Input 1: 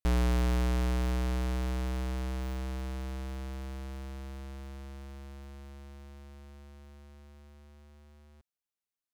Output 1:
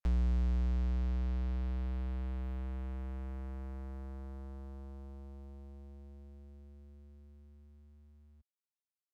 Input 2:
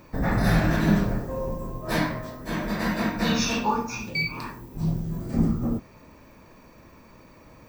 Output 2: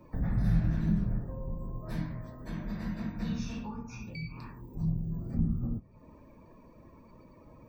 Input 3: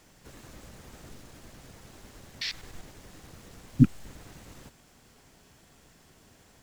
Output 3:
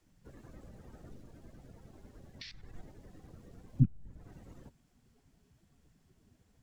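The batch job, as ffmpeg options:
-filter_complex "[0:a]afftdn=noise_reduction=15:noise_floor=-50,acrossover=split=190[link_01][link_02];[link_02]acompressor=threshold=-46dB:ratio=4[link_03];[link_01][link_03]amix=inputs=2:normalize=0,volume=-2.5dB"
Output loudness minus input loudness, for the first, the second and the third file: −4.0, −8.0, −7.0 LU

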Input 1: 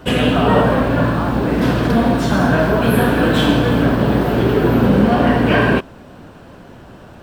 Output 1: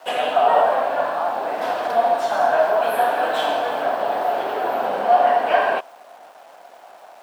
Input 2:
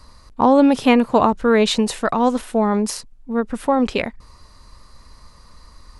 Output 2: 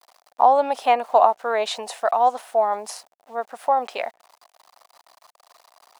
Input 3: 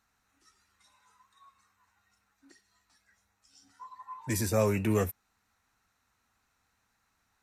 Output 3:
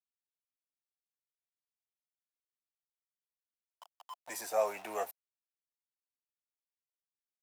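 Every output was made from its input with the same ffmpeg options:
-af "aeval=exprs='val(0)*gte(abs(val(0)),0.01)':channel_layout=same,highpass=frequency=710:width_type=q:width=4.9,volume=-7.5dB"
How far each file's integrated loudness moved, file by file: −5.0, −3.5, −6.5 LU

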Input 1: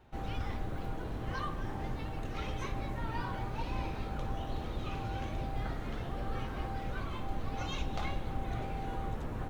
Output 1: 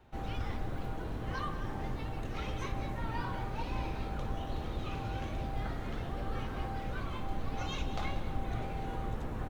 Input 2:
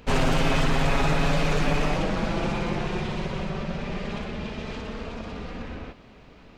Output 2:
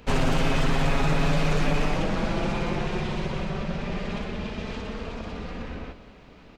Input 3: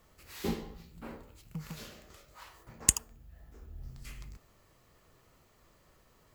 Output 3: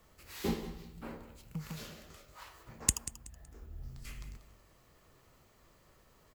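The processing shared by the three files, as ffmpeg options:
-filter_complex "[0:a]acrossover=split=320[link_01][link_02];[link_02]acompressor=threshold=-27dB:ratio=2[link_03];[link_01][link_03]amix=inputs=2:normalize=0,aecho=1:1:187|374|561:0.2|0.0559|0.0156"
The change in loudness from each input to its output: 0.0, −0.5, −5.0 LU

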